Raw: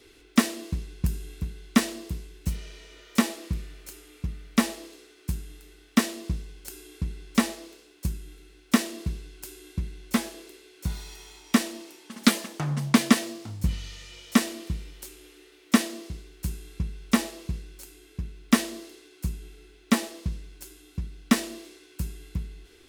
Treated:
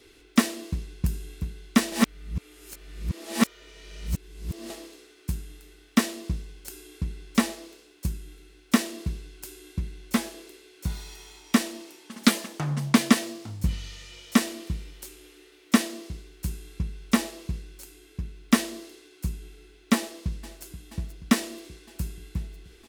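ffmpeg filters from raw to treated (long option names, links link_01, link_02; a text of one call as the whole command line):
ffmpeg -i in.wav -filter_complex "[0:a]asplit=2[link_01][link_02];[link_02]afade=type=in:start_time=19.95:duration=0.01,afade=type=out:start_time=20.64:duration=0.01,aecho=0:1:480|960|1440|1920|2400|2880|3360|3840|4320|4800|5280|5760:0.237137|0.177853|0.13339|0.100042|0.0750317|0.0562738|0.0422054|0.031654|0.0237405|0.0178054|0.013354|0.0100155[link_03];[link_01][link_03]amix=inputs=2:normalize=0,asplit=3[link_04][link_05][link_06];[link_04]atrim=end=1.922[link_07];[link_05]atrim=start=1.918:end=4.702,asetpts=PTS-STARTPTS,areverse[link_08];[link_06]atrim=start=4.698[link_09];[link_07][link_08]acrossfade=duration=0.004:curve1=hsin:curve2=hsin[link_10];[link_10][link_09]acrossfade=duration=0.004:curve1=hsin:curve2=hsin" out.wav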